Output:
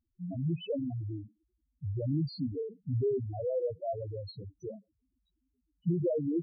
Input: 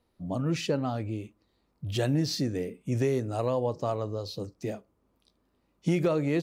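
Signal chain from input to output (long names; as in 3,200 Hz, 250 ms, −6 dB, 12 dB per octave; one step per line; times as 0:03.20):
loose part that buzzes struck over −27 dBFS, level −20 dBFS
spectral peaks only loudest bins 2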